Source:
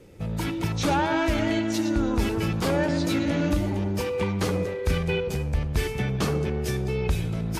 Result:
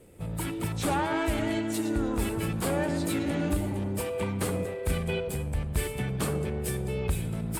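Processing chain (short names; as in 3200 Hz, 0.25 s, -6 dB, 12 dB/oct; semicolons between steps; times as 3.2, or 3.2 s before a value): resonant high shelf 7100 Hz +6 dB, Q 3; harmoniser +5 st -12 dB; gain -4.5 dB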